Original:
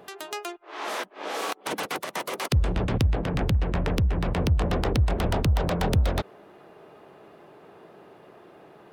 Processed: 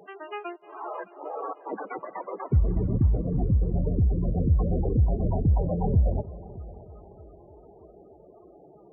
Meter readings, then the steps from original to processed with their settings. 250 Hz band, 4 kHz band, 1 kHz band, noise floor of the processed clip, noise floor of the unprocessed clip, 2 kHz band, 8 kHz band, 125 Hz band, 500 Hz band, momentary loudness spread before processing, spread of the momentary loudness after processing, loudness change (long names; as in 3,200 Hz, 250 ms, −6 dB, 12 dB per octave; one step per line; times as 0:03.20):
0.0 dB, below −20 dB, −4.5 dB, −53 dBFS, −52 dBFS, below −10 dB, below −40 dB, +1.0 dB, −2.0 dB, 10 LU, 15 LU, 0.0 dB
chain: bass and treble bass +1 dB, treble −12 dB
spectral peaks only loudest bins 16
echo machine with several playback heads 308 ms, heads first and second, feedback 44%, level −21 dB